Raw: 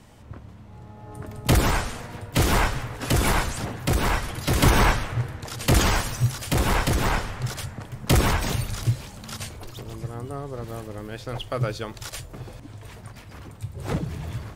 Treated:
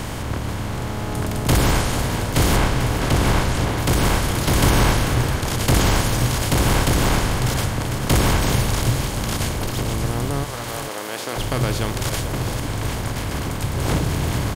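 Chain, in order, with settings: per-bin compression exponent 0.4; 2.56–3.78 high shelf 6100 Hz -8 dB; 10.43–11.36 HPF 730 Hz -> 320 Hz 12 dB/oct; dynamic EQ 1500 Hz, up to -3 dB, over -30 dBFS, Q 0.74; on a send: echo 0.444 s -10.5 dB; on the sum: gain -1.5 dB

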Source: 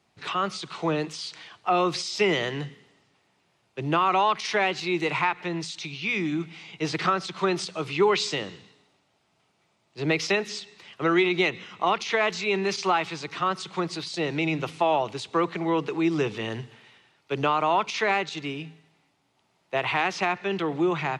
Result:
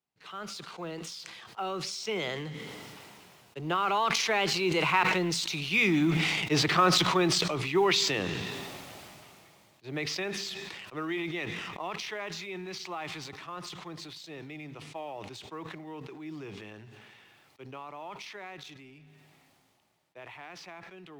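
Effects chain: G.711 law mismatch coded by A; Doppler pass-by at 5.89, 20 m/s, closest 17 m; sustainer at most 21 dB/s; gain +3 dB

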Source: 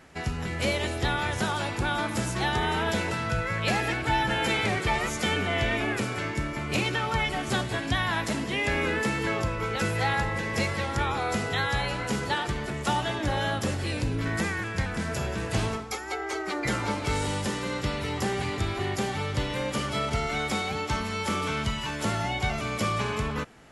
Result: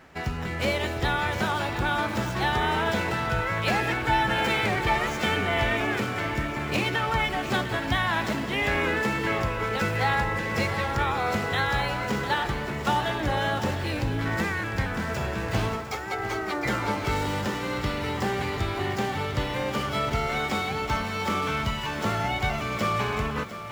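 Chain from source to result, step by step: median filter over 5 samples; bell 1100 Hz +3 dB 2.1 oct; lo-fi delay 0.702 s, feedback 55%, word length 8-bit, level -12 dB

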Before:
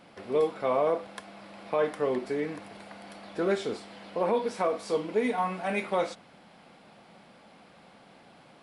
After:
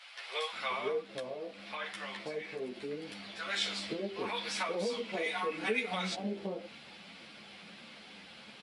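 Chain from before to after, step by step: bands offset in time highs, lows 0.53 s, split 740 Hz; compressor 6:1, threshold -33 dBFS, peak gain reduction 10.5 dB; weighting filter D; 1.01–3.53 flange 1.4 Hz, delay 3.3 ms, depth 7.9 ms, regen -62%; low shelf 120 Hz +11.5 dB; ensemble effect; gain +2.5 dB

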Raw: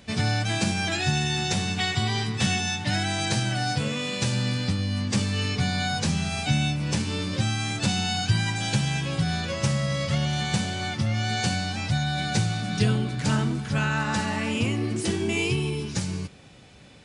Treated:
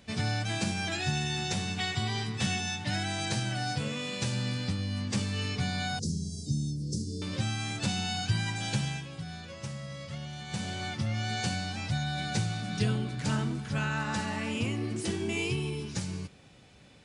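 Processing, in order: 5.99–7.22 elliptic band-stop 420–5000 Hz, stop band 40 dB; 8.84–10.7 dip -8.5 dB, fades 0.24 s; gain -6 dB

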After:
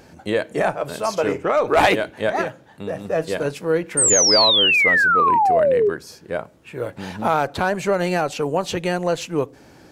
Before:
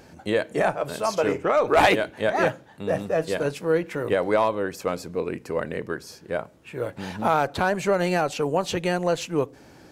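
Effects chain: 2.41–3.05 compressor 3:1, threshold -27 dBFS, peak gain reduction 8 dB; 3.97–5.9 painted sound fall 390–8900 Hz -18 dBFS; gain +2 dB

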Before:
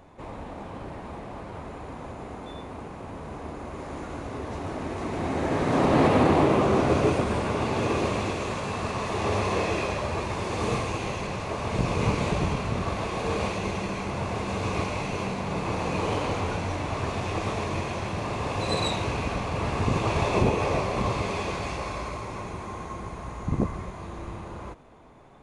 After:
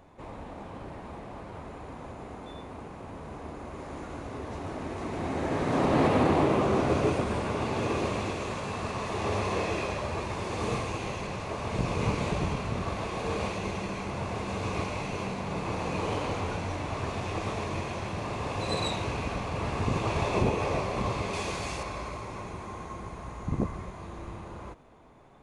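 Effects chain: 21.33–21.83 high shelf 4600 Hz +10 dB; gain -3.5 dB

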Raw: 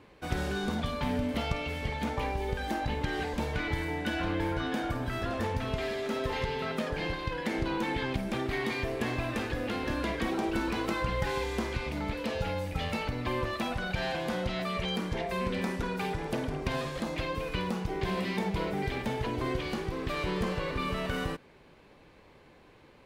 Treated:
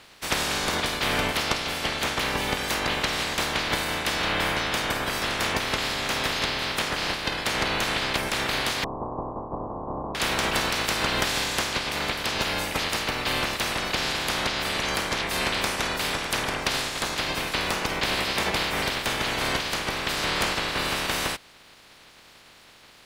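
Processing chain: spectral limiter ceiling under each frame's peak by 27 dB; 8.84–10.15 Chebyshev low-pass 1100 Hz, order 6; gain +5.5 dB

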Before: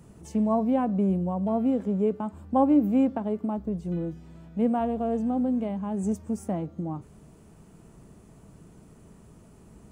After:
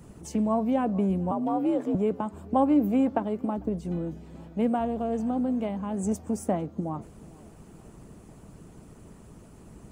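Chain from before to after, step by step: tape echo 0.45 s, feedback 56%, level -24 dB, low-pass 5000 Hz; 1.31–1.95 frequency shift +58 Hz; harmonic-percussive split percussive +8 dB; gain -1.5 dB

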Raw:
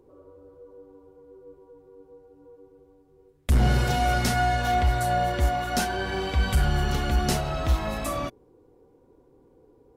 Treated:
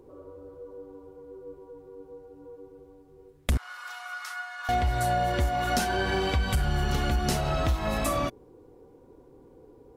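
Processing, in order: compressor 6:1, threshold -27 dBFS, peak gain reduction 10 dB; 3.57–4.69 ladder high-pass 1100 Hz, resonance 70%; gain +4.5 dB

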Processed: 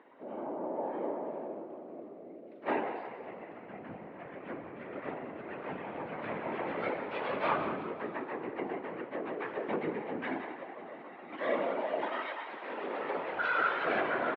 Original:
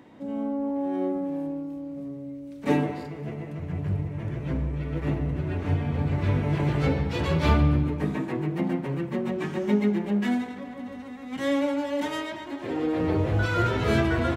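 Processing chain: one-sided fold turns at -15 dBFS; 12.22–13.85 tilt +2.5 dB/oct; whisperiser; BPF 590–2700 Hz; air absorption 300 m; on a send: frequency-shifting echo 0.182 s, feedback 46%, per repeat +49 Hz, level -12 dB

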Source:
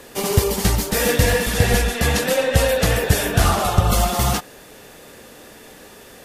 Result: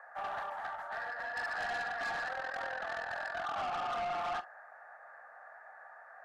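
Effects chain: elliptic band-pass 680–1700 Hz, stop band 40 dB; notch 1000 Hz, Q 6.5; limiter -20 dBFS, peak gain reduction 7 dB; 0.47–1.37 compressor 6:1, threshold -33 dBFS, peak gain reduction 7.5 dB; 2.28–3.56 AM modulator 42 Hz, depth 60%; soft clip -31 dBFS, distortion -10 dB; reverb, pre-delay 39 ms, DRR 16 dB; gain -2 dB

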